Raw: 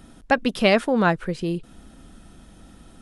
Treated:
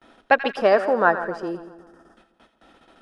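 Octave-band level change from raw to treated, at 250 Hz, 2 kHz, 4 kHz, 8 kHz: -7.0 dB, +2.0 dB, -7.0 dB, under -10 dB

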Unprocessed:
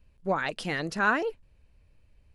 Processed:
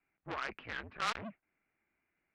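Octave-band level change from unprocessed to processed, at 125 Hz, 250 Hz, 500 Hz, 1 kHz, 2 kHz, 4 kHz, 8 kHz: -14.0, -15.5, -17.0, -10.0, -13.0, -5.0, -6.0 dB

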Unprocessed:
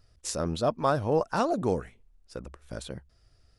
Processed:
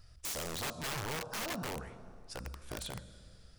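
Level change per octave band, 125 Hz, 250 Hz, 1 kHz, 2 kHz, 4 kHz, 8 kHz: -10.0, -13.0, -12.5, -1.5, +0.5, -1.5 dB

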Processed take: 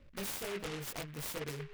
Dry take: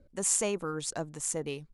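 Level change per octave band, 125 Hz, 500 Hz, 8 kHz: -2.5, -8.0, -15.5 dB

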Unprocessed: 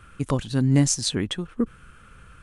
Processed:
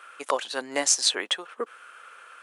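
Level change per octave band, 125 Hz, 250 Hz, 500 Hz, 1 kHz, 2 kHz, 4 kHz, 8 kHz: under -35 dB, -17.0 dB, +0.5 dB, +6.0 dB, +6.0 dB, +4.5 dB, +3.0 dB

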